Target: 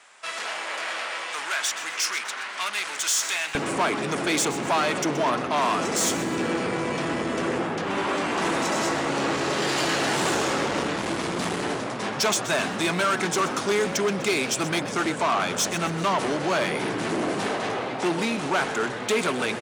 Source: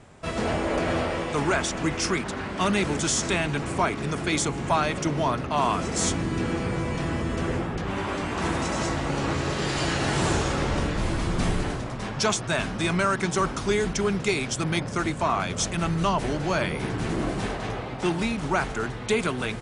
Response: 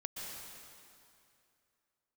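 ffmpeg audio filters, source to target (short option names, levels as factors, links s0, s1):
-filter_complex "[0:a]asoftclip=type=tanh:threshold=0.0596,asetnsamples=n=441:p=0,asendcmd='3.55 highpass f 250',highpass=1300,asplit=5[s0][s1][s2][s3][s4];[s1]adelay=126,afreqshift=130,volume=0.2[s5];[s2]adelay=252,afreqshift=260,volume=0.0861[s6];[s3]adelay=378,afreqshift=390,volume=0.0367[s7];[s4]adelay=504,afreqshift=520,volume=0.0158[s8];[s0][s5][s6][s7][s8]amix=inputs=5:normalize=0,volume=2.11"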